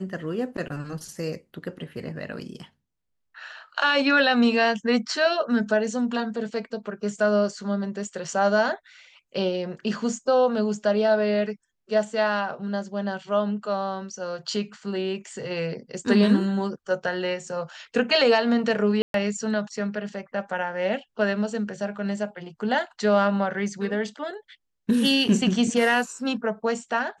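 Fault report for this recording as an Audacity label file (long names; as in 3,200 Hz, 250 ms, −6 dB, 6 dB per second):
19.020000	19.140000	drop-out 122 ms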